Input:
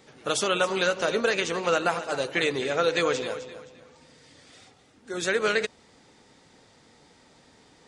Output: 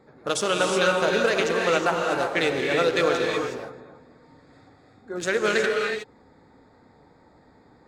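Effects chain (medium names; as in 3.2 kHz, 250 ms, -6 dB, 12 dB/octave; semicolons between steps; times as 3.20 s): local Wiener filter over 15 samples; gated-style reverb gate 390 ms rising, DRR 1 dB; trim +1.5 dB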